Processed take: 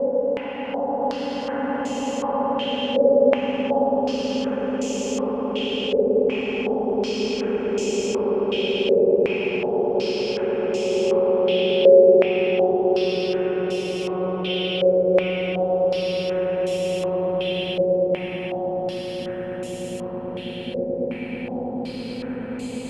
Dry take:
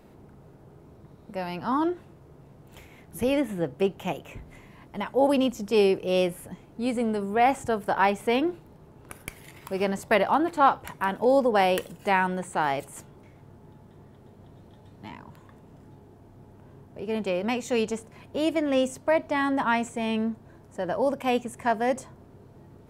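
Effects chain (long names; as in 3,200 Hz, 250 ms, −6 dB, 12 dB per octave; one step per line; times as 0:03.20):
downward compressor, threshold −26 dBFS, peak gain reduction 12 dB
extreme stretch with random phases 15×, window 1.00 s, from 0:05.24
on a send: echo that builds up and dies away 109 ms, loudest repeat 8, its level −6 dB
on the sum: low-pass on a step sequencer 2.7 Hz 530–6,900 Hz
level −1 dB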